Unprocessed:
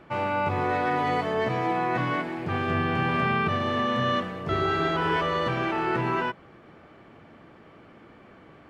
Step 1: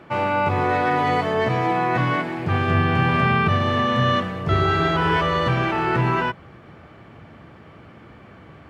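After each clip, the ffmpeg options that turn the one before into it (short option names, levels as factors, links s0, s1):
-af "highpass=65,asubboost=boost=3:cutoff=150,volume=1.88"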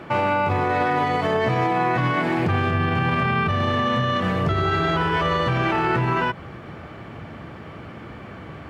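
-af "acompressor=threshold=0.1:ratio=6,alimiter=limit=0.1:level=0:latency=1:release=63,volume=2.24"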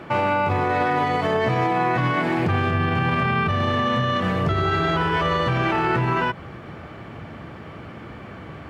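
-af anull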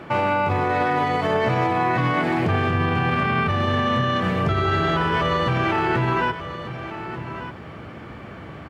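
-af "aecho=1:1:1191:0.251"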